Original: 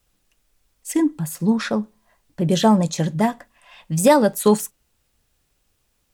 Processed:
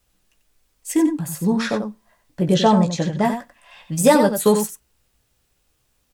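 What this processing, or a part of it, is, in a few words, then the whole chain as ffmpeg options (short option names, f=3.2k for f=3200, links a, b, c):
slapback doubling: -filter_complex "[0:a]asplit=3[a][b][c];[b]adelay=16,volume=-6.5dB[d];[c]adelay=92,volume=-8dB[e];[a][d][e]amix=inputs=3:normalize=0,asettb=1/sr,asplit=3[f][g][h];[f]atrim=end=2.544[i];[g]atrim=start=2.54:end=3.25,asetpts=PTS-STARTPTS,afade=t=in:d=0.004:c=qsin,afade=t=out:st=0.706:d=0.004:c=qsin,lowpass=5.9k[j];[h]atrim=start=3.246[k];[i][j]acrossfade=d=0.004:c1=hsin:c2=qsin[l];[l][k]acrossfade=d=0.004:c1=qsin:c2=hsin"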